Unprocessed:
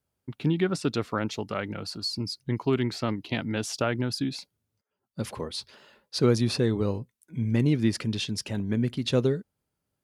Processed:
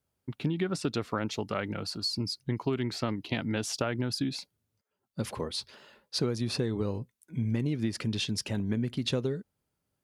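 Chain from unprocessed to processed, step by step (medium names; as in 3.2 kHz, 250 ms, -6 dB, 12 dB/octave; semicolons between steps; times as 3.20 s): compression 12:1, threshold -25 dBFS, peak gain reduction 10.5 dB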